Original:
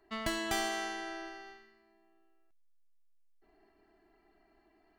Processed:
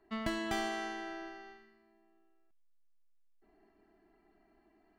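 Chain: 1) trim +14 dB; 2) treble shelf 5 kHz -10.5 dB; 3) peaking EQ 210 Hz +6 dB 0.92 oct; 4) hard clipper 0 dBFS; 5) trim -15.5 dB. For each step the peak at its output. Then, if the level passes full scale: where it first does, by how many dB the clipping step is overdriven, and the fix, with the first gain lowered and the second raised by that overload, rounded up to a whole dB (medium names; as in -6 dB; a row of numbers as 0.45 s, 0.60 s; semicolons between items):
-5.5 dBFS, -7.0 dBFS, -5.5 dBFS, -5.5 dBFS, -21.0 dBFS; nothing clips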